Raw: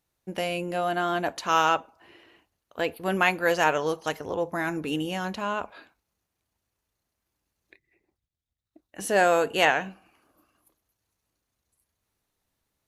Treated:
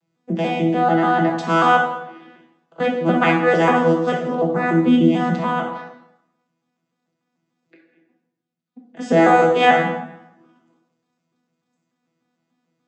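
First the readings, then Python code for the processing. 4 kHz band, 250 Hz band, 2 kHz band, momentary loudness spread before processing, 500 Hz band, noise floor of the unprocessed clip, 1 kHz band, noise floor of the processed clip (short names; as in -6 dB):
+2.0 dB, +14.5 dB, +5.5 dB, 10 LU, +8.0 dB, -83 dBFS, +9.0 dB, -77 dBFS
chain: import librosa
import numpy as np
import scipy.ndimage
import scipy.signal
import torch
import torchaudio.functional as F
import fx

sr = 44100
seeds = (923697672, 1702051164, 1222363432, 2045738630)

y = fx.vocoder_arp(x, sr, chord='bare fifth', root=52, every_ms=147)
y = fx.rev_plate(y, sr, seeds[0], rt60_s=0.85, hf_ratio=0.8, predelay_ms=0, drr_db=-0.5)
y = y * librosa.db_to_amplitude(7.0)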